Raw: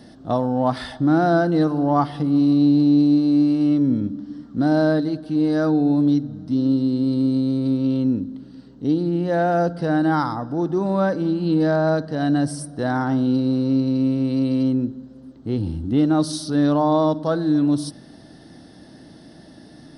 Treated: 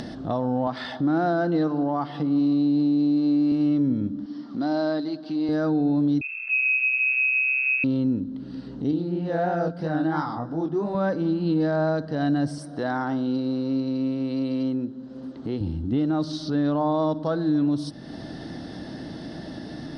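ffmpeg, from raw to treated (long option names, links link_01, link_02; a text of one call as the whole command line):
ffmpeg -i in.wav -filter_complex "[0:a]asettb=1/sr,asplit=3[link_01][link_02][link_03];[link_01]atrim=end=0.674[link_04];[link_02]atrim=start=0.67:end=3.52,asetpts=PTS-STARTPTS,afade=type=in:duration=0.004:curve=qsin,afade=type=out:start_time=2.846:duration=0.004:curve=qsin,highpass=160,lowpass=7000[link_05];[link_03]atrim=start=3.516[link_06];[link_04][link_05]acrossfade=duration=0.004:curve1=hsin:curve2=qsin[link_07];[link_07][link_06]acrossfade=duration=0.004:curve1=qsin:curve2=hsin,asettb=1/sr,asplit=3[link_08][link_09][link_10];[link_08]atrim=end=4.264[link_11];[link_09]atrim=start=4.26:end=5.49,asetpts=PTS-STARTPTS,afade=type=in:duration=0.004:curve=qsin,afade=type=out:start_time=1.226:duration=0.004:curve=qsin,highpass=310,equalizer=frequency=480:width_type=q:width=4:gain=-9,equalizer=frequency=1600:width_type=q:width=4:gain=-5,equalizer=frequency=4700:width_type=q:width=4:gain=6,lowpass=frequency=6600:width=0.5412,lowpass=frequency=6600:width=1.3066[link_12];[link_10]atrim=start=5.486[link_13];[link_11][link_12]acrossfade=duration=0.004:curve1=hsin:curve2=qsin[link_14];[link_14][link_13]acrossfade=duration=0.004:curve1=qsin:curve2=hsin,asettb=1/sr,asplit=3[link_15][link_16][link_17];[link_15]atrim=end=6.214[link_18];[link_16]atrim=start=6.21:end=7.84,asetpts=PTS-STARTPTS,afade=type=in:duration=0.004:curve=qsin,afade=type=out:start_time=1.626:duration=0.004:curve=qsin,lowpass=frequency=2400:width_type=q:width=0.5098,lowpass=frequency=2400:width_type=q:width=0.6013,lowpass=frequency=2400:width_type=q:width=0.9,lowpass=frequency=2400:width_type=q:width=2.563,afreqshift=-2800[link_19];[link_17]atrim=start=7.836[link_20];[link_18][link_19]acrossfade=duration=0.004:curve1=hsin:curve2=qsin[link_21];[link_21][link_20]acrossfade=duration=0.004:curve1=qsin:curve2=hsin,asettb=1/sr,asplit=3[link_22][link_23][link_24];[link_22]atrim=end=8.914[link_25];[link_23]atrim=start=8.91:end=10.95,asetpts=PTS-STARTPTS,afade=type=in:duration=0.004:curve=qsin,afade=type=out:start_time=2.036:duration=0.004:curve=qsin,flanger=delay=18:depth=7.2:speed=3[link_26];[link_24]atrim=start=10.946[link_27];[link_25][link_26]acrossfade=duration=0.004:curve1=hsin:curve2=qsin[link_28];[link_28][link_27]acrossfade=duration=0.004:curve1=qsin:curve2=hsin,asettb=1/sr,asplit=3[link_29][link_30][link_31];[link_29]atrim=end=12.584[link_32];[link_30]atrim=start=12.58:end=15.61,asetpts=PTS-STARTPTS,afade=type=in:duration=0.004:curve=qsin,afade=type=out:start_time=3.026:duration=0.004:curve=qsin,highpass=frequency=290:poles=1[link_33];[link_31]atrim=start=15.606[link_34];[link_32][link_33]acrossfade=duration=0.004:curve1=hsin:curve2=qsin[link_35];[link_35][link_34]acrossfade=duration=0.004:curve1=qsin:curve2=hsin,asettb=1/sr,asplit=3[link_36][link_37][link_38];[link_36]atrim=end=16.244[link_39];[link_37]atrim=start=16.24:end=16.94,asetpts=PTS-STARTPTS,afade=type=in:duration=0.004:curve=qsin,afade=type=out:start_time=0.696:duration=0.004:curve=qsin,lowpass=5000[link_40];[link_38]atrim=start=16.936[link_41];[link_39][link_40]acrossfade=duration=0.004:curve1=hsin:curve2=qsin[link_42];[link_42][link_41]acrossfade=duration=0.004:curve1=qsin:curve2=hsin,alimiter=limit=-13dB:level=0:latency=1:release=82,lowpass=5100,acompressor=mode=upward:threshold=-22dB:ratio=2.5,volume=-2.5dB" out.wav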